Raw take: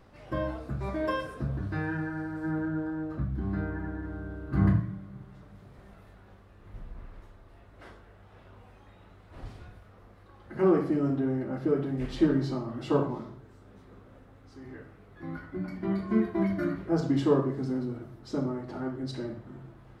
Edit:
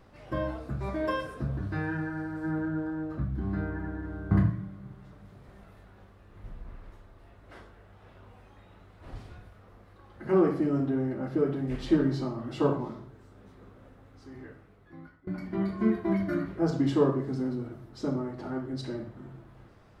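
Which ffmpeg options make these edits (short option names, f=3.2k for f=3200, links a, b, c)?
-filter_complex "[0:a]asplit=3[a][b][c];[a]atrim=end=4.312[d];[b]atrim=start=4.608:end=15.57,asetpts=PTS-STARTPTS,afade=t=out:st=10.022:d=0.94:silence=0.0841395[e];[c]atrim=start=15.57,asetpts=PTS-STARTPTS,afade=t=in:d=0.004:c=hsin:silence=0.0841395[f];[e][f]concat=n=2:v=0:a=1[g];[d][g]acrossfade=d=0.004:c1=hsin:c2=hsin"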